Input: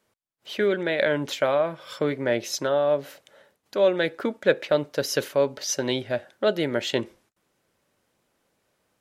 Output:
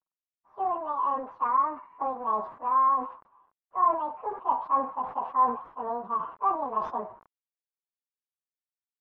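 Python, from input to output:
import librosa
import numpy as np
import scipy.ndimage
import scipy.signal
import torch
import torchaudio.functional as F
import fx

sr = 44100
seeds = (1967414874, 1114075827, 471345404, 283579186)

p1 = fx.pitch_bins(x, sr, semitones=10.5)
p2 = fx.rider(p1, sr, range_db=10, speed_s=2.0)
p3 = p1 + F.gain(torch.from_numpy(p2), 0.0).numpy()
p4 = fx.quant_companded(p3, sr, bits=4)
p5 = np.clip(10.0 ** (9.0 / 20.0) * p4, -1.0, 1.0) / 10.0 ** (9.0 / 20.0)
p6 = fx.ladder_lowpass(p5, sr, hz=1200.0, resonance_pct=60)
p7 = fx.sustainer(p6, sr, db_per_s=120.0)
y = F.gain(torch.from_numpy(p7), -4.0).numpy()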